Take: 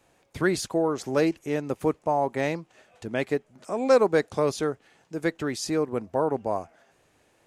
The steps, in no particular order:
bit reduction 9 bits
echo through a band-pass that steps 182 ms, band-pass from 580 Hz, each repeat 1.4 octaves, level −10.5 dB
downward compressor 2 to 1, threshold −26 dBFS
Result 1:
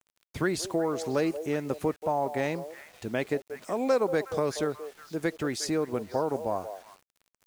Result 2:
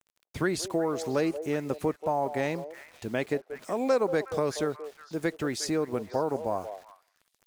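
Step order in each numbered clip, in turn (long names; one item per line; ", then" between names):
echo through a band-pass that steps, then downward compressor, then bit reduction
bit reduction, then echo through a band-pass that steps, then downward compressor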